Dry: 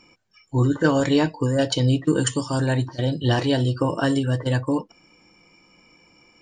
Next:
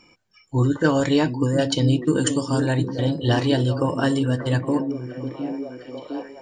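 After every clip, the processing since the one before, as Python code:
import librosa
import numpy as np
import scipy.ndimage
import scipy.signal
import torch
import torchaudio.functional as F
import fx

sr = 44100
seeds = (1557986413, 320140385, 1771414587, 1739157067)

y = fx.echo_stepped(x, sr, ms=709, hz=210.0, octaves=0.7, feedback_pct=70, wet_db=-4.5)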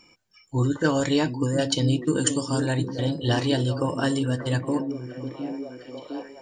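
y = fx.high_shelf(x, sr, hz=4200.0, db=7.0)
y = F.gain(torch.from_numpy(y), -3.5).numpy()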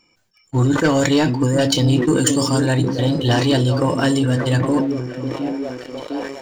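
y = fx.leveller(x, sr, passes=2)
y = fx.sustainer(y, sr, db_per_s=51.0)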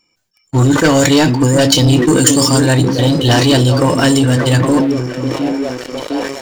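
y = fx.high_shelf(x, sr, hz=4300.0, db=7.0)
y = fx.leveller(y, sr, passes=2)
y = F.gain(torch.from_numpy(y), -1.0).numpy()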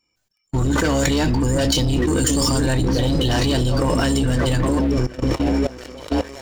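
y = fx.octave_divider(x, sr, octaves=2, level_db=-2.0)
y = fx.level_steps(y, sr, step_db=18)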